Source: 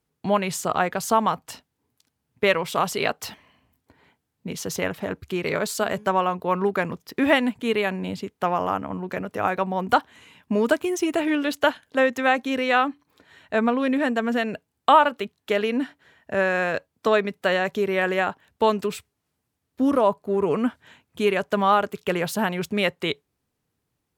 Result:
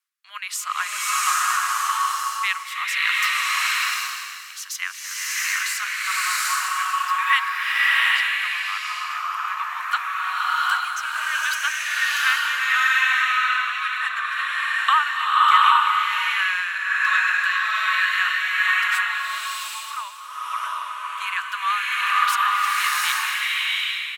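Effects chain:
Chebyshev high-pass filter 1,100 Hz, order 5
single-tap delay 465 ms −10 dB
rotating-speaker cabinet horn 1.2 Hz
slow-attack reverb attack 780 ms, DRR −7 dB
level +3.5 dB

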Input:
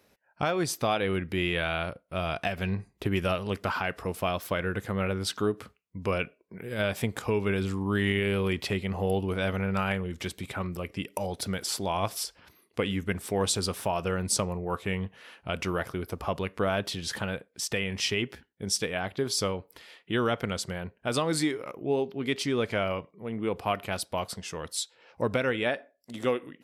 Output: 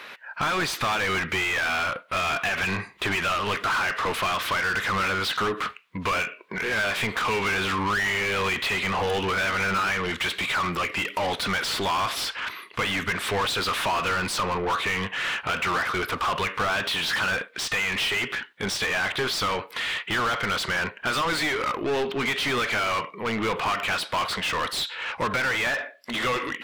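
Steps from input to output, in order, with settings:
flat-topped bell 2,000 Hz +11 dB 2.3 octaves
downward compressor, threshold −23 dBFS, peak gain reduction 8.5 dB
mid-hump overdrive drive 29 dB, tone 3,300 Hz, clips at −15.5 dBFS
level −2.5 dB

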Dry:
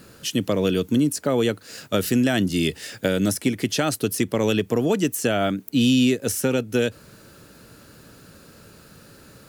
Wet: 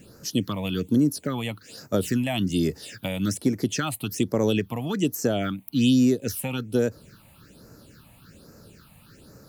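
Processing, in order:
all-pass phaser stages 6, 1.2 Hz, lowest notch 380–3,200 Hz
level −1.5 dB

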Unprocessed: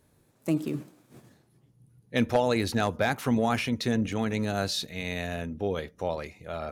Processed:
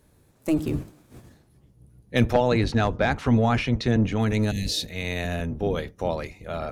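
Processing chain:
sub-octave generator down 1 octave, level −1 dB
0:02.33–0:04.20: high-frequency loss of the air 93 metres
0:04.53–0:04.82: healed spectral selection 280–1,700 Hz after
level +3.5 dB

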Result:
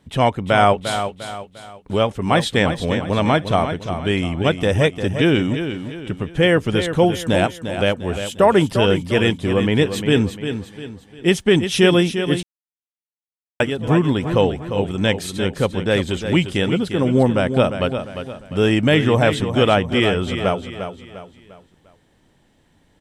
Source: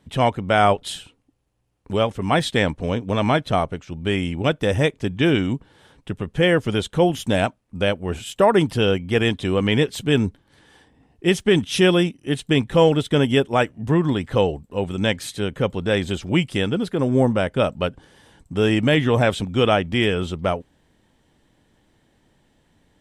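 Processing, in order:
0:09.33–0:09.77: parametric band 3,800 Hz −8 dB 1.9 octaves
repeating echo 350 ms, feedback 39%, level −9 dB
0:12.43–0:13.60: silence
level +2 dB

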